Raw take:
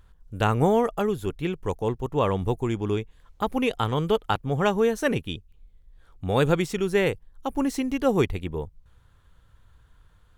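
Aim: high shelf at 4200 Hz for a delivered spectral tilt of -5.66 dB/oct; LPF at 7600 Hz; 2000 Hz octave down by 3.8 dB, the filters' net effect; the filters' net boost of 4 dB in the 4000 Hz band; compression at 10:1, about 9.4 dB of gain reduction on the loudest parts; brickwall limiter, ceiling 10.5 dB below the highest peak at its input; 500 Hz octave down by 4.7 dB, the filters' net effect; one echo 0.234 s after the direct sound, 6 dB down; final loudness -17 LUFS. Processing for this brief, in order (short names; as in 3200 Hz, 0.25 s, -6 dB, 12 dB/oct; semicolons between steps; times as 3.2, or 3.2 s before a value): LPF 7600 Hz; bell 500 Hz -5.5 dB; bell 2000 Hz -8 dB; bell 4000 Hz +7 dB; high shelf 4200 Hz +4 dB; compressor 10:1, threshold -28 dBFS; limiter -26 dBFS; echo 0.234 s -6 dB; gain +19.5 dB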